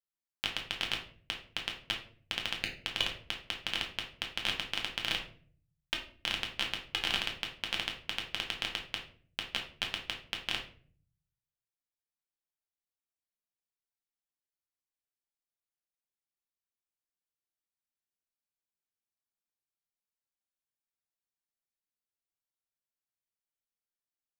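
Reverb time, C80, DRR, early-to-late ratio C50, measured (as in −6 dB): 0.45 s, 12.5 dB, 0.5 dB, 8.0 dB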